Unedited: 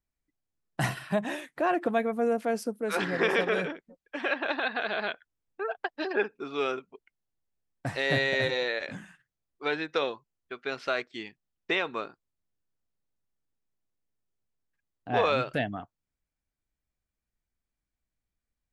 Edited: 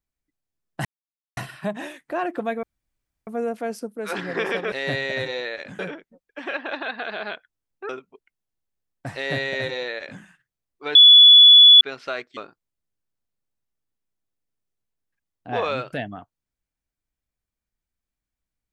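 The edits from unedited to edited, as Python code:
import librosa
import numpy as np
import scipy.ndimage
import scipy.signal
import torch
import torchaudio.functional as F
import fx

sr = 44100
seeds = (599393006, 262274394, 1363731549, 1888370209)

y = fx.edit(x, sr, fx.insert_silence(at_s=0.85, length_s=0.52),
    fx.insert_room_tone(at_s=2.11, length_s=0.64),
    fx.cut(start_s=5.66, length_s=1.03),
    fx.duplicate(start_s=7.95, length_s=1.07, to_s=3.56),
    fx.bleep(start_s=9.75, length_s=0.86, hz=3420.0, db=-6.0),
    fx.cut(start_s=11.17, length_s=0.81), tone=tone)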